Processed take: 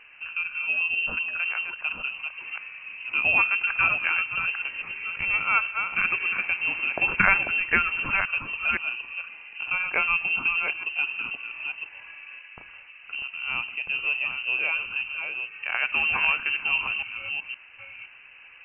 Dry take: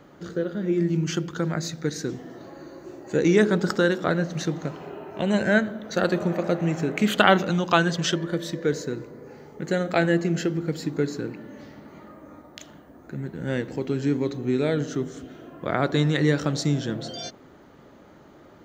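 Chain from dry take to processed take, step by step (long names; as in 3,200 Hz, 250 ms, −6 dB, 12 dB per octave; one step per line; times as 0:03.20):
delay that plays each chunk backwards 516 ms, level −6 dB
voice inversion scrambler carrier 2,900 Hz
dynamic equaliser 2,200 Hz, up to −4 dB, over −32 dBFS, Q 1.1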